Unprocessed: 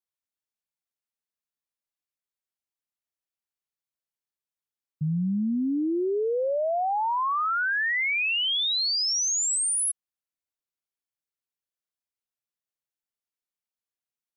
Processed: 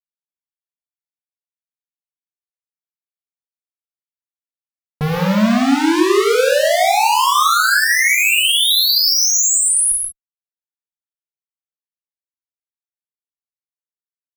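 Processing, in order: fuzz box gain 53 dB, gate -57 dBFS; gated-style reverb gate 210 ms flat, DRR -1 dB; trim -4 dB

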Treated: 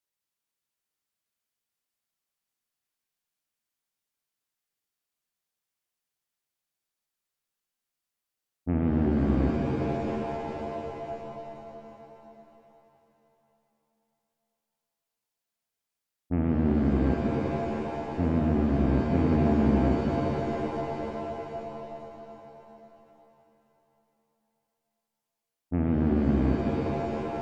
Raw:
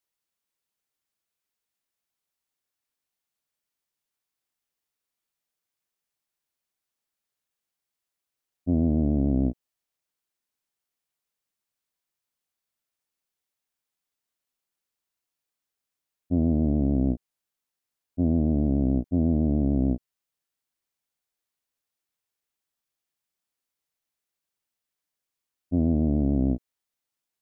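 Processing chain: Chebyshev shaper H 8 -23 dB, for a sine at -12.5 dBFS; pitch-shifted reverb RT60 3.5 s, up +7 st, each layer -2 dB, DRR 3 dB; trim -3.5 dB

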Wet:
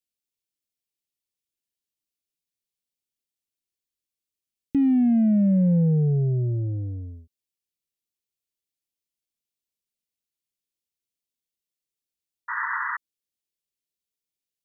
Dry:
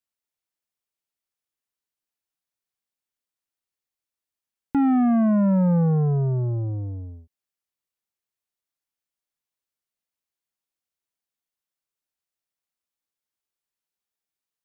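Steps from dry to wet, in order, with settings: Butterworth band-stop 1.1 kHz, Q 0.56; painted sound noise, 12.48–12.97 s, 880–2000 Hz -28 dBFS

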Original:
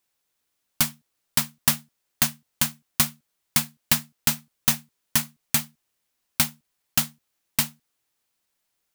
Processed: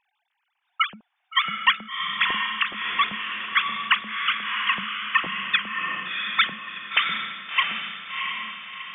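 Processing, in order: formants replaced by sine waves; echo that smears into a reverb 702 ms, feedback 45%, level -3 dB

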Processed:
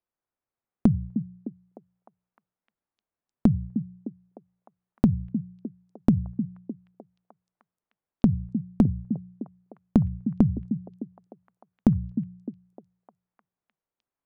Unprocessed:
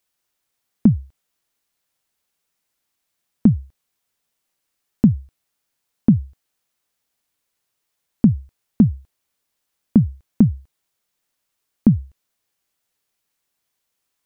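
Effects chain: tracing distortion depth 0.086 ms; low-pass 1.2 kHz 12 dB/octave; de-hum 60.24 Hz, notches 3; gate -50 dBFS, range -7 dB; compression 4:1, threshold -16 dBFS, peak gain reduction 7.5 dB; repeats whose band climbs or falls 305 ms, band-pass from 210 Hz, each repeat 0.7 oct, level -8 dB

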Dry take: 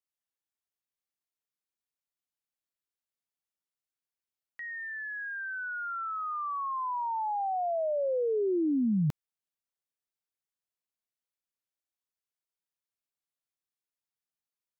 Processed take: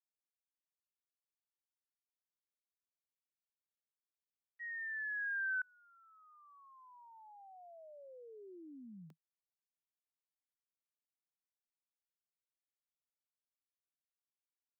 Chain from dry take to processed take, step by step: expander -31 dBFS; steep high-pass 160 Hz 96 dB/octave; inverted gate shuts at -40 dBFS, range -33 dB; trim +7.5 dB

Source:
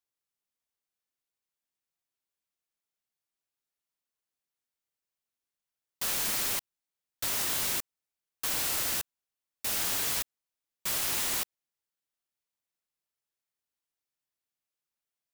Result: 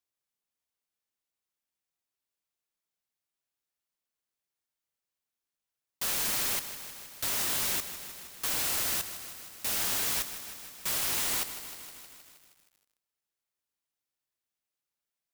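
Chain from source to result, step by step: bit-crushed delay 157 ms, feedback 80%, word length 8-bit, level -12 dB

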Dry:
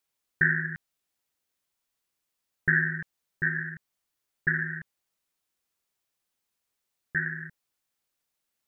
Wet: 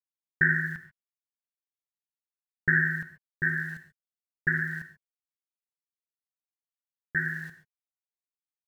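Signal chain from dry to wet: small samples zeroed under -48.5 dBFS; gated-style reverb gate 160 ms flat, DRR 9 dB

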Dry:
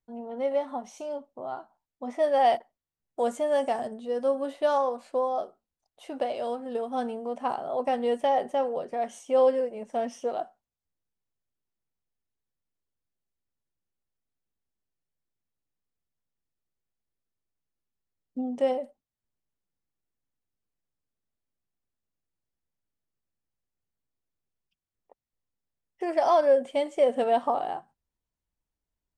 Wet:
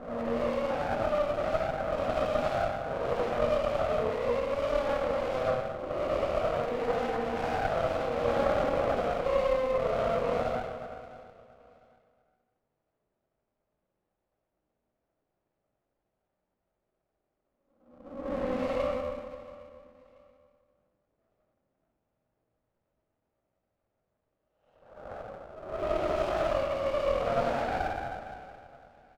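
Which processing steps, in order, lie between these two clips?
reverse spectral sustain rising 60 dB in 0.84 s; low-pass 2 kHz; peaking EQ 650 Hz +13 dB 1.1 oct; band-stop 700 Hz, Q 17; compression 6:1, threshold -28 dBFS, peak gain reduction 21 dB; saturation -35 dBFS, distortion -8 dB; chorus voices 6, 0.98 Hz, delay 19 ms, depth 3 ms; feedback delay 681 ms, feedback 30%, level -19.5 dB; reverberation RT60 1.8 s, pre-delay 30 ms, DRR -7 dB; sliding maximum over 17 samples; trim +3.5 dB

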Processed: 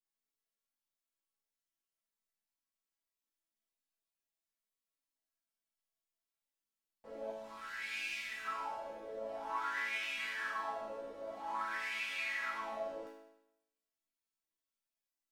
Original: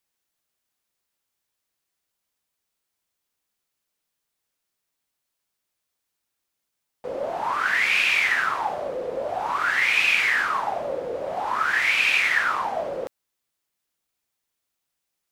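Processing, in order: 7.32–8.45 s: FFT filter 150 Hz 0 dB, 830 Hz -12 dB, 5 kHz -1 dB; peak limiter -15 dBFS, peak gain reduction 7.5 dB; bass shelf 110 Hz +8 dB; chord resonator A3 major, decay 0.85 s; trim +8 dB

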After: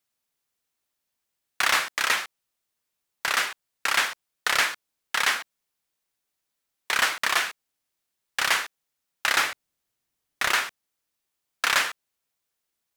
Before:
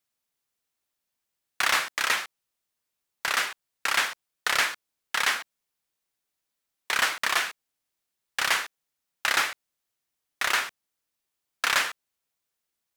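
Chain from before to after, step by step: 9.43–10.53 s: bass shelf 340 Hz +6.5 dB; trim +1.5 dB

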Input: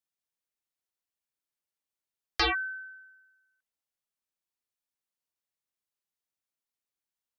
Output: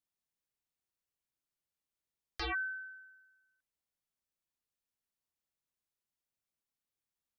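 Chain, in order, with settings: bass shelf 280 Hz +8 dB; peak limiter -28 dBFS, peak gain reduction 12 dB; trim -3 dB

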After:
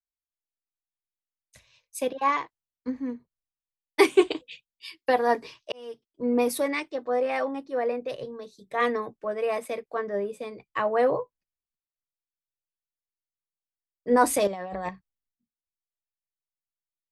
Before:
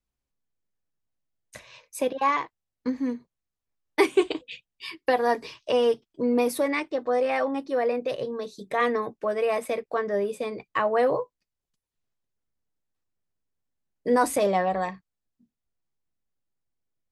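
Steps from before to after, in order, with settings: 5.72–6.25 s: fade in; 14.47–14.89 s: compressor with a negative ratio -30 dBFS, ratio -1; three bands expanded up and down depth 70%; trim -2 dB

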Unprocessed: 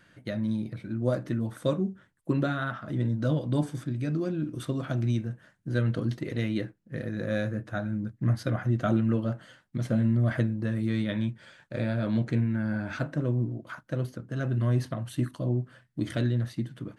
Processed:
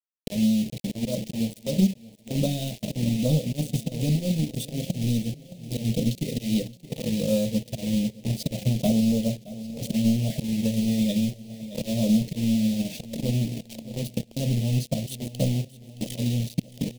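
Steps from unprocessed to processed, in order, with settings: slow attack 189 ms; waveshaping leveller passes 2; static phaser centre 340 Hz, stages 6; bit crusher 6-bit; Chebyshev band-stop 550–2900 Hz, order 2; feedback delay 620 ms, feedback 55%, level -15 dB; dynamic bell 760 Hz, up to -4 dB, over -42 dBFS, Q 0.85; transient shaper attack +6 dB, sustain -4 dB; 4.54–6.64 s: peaking EQ 1.1 kHz -12 dB 0.4 oct; trim +3 dB

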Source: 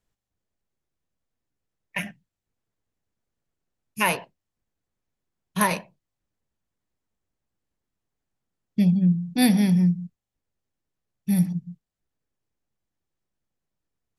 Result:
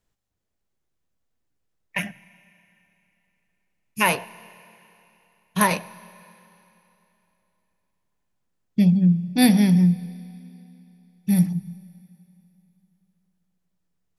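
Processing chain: Schroeder reverb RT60 3.1 s, combs from 28 ms, DRR 19.5 dB; trim +2.5 dB

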